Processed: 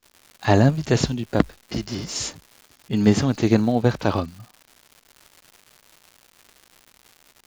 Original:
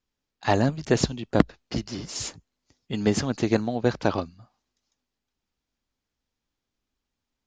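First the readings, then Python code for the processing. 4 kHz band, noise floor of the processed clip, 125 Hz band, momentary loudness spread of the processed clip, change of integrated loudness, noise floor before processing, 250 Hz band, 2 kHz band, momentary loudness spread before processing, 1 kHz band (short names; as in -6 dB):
+3.0 dB, -60 dBFS, +7.0 dB, 11 LU, +4.5 dB, -85 dBFS, +5.0 dB, +2.5 dB, 10 LU, +2.5 dB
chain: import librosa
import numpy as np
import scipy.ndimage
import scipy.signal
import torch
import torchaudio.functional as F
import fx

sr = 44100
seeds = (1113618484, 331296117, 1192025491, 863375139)

y = fx.hpss(x, sr, part='harmonic', gain_db=9)
y = fx.dmg_crackle(y, sr, seeds[0], per_s=280.0, level_db=-36.0)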